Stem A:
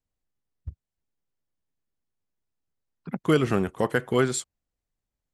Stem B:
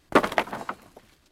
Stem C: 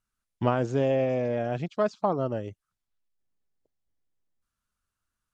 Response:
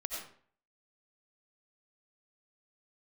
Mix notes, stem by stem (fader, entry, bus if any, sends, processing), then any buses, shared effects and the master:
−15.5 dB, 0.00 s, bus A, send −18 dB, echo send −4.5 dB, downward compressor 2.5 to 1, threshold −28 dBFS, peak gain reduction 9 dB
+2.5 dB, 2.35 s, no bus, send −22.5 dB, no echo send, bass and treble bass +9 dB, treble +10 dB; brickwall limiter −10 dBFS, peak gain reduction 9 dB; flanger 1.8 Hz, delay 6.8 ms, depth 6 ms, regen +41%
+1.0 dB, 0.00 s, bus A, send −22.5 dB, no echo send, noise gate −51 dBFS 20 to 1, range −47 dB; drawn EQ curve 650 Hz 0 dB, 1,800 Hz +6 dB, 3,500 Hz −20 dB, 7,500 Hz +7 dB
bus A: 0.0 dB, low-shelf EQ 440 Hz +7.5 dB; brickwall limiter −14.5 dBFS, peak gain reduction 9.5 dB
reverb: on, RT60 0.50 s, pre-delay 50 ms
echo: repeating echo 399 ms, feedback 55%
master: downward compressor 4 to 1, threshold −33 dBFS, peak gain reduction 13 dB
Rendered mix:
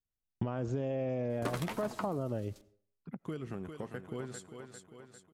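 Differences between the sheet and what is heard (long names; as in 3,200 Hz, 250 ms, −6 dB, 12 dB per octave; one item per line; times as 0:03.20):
stem A: send −18 dB → −24 dB
stem B: entry 2.35 s → 1.30 s
stem C: missing drawn EQ curve 650 Hz 0 dB, 1,800 Hz +6 dB, 3,500 Hz −20 dB, 7,500 Hz +7 dB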